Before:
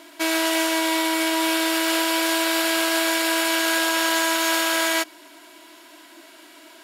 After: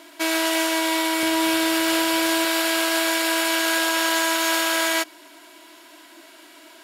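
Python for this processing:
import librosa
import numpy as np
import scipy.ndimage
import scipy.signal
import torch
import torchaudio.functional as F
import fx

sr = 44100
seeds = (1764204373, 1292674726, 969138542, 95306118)

y = fx.peak_eq(x, sr, hz=120.0, db=fx.steps((0.0, -4.5), (1.23, 13.5), (2.45, -4.5)), octaves=1.3)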